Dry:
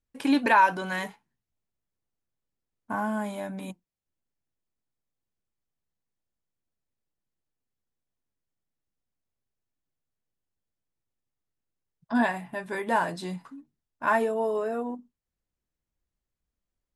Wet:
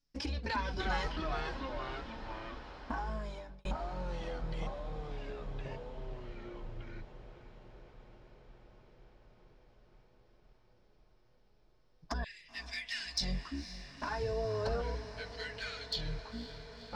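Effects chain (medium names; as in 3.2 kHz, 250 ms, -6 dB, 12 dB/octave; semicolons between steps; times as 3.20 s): octave divider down 2 oct, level +2 dB; 12.24–13.21 s: steep high-pass 2 kHz 48 dB/octave; compression 16:1, threshold -31 dBFS, peak gain reduction 17 dB; peak limiter -28 dBFS, peak gain reduction 7.5 dB; four-pole ladder low-pass 5.5 kHz, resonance 80%; touch-sensitive flanger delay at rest 7.1 ms, full sweep at -37 dBFS; ever faster or slower copies 257 ms, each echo -3 st, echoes 3; echo that smears into a reverb 510 ms, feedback 77%, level -13 dB; 2.96–3.65 s: fade out; trim +15.5 dB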